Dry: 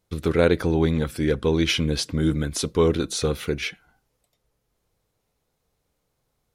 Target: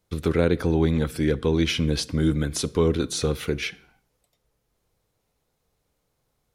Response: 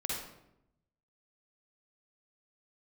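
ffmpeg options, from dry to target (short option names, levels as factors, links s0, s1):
-filter_complex "[0:a]acrossover=split=330[s0][s1];[s1]acompressor=threshold=0.0501:ratio=2[s2];[s0][s2]amix=inputs=2:normalize=0,asplit=2[s3][s4];[1:a]atrim=start_sample=2205,afade=t=out:st=0.4:d=0.01,atrim=end_sample=18081[s5];[s4][s5]afir=irnorm=-1:irlink=0,volume=0.0668[s6];[s3][s6]amix=inputs=2:normalize=0"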